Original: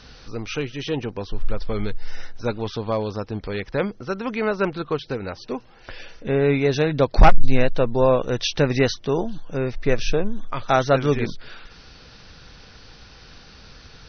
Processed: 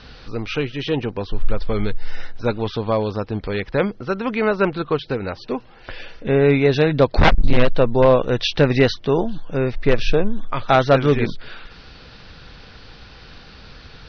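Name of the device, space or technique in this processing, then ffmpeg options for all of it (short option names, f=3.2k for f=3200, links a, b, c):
synthesiser wavefolder: -af "aeval=exprs='0.376*(abs(mod(val(0)/0.376+3,4)-2)-1)':c=same,lowpass=f=4.6k:w=0.5412,lowpass=f=4.6k:w=1.3066,volume=4dB"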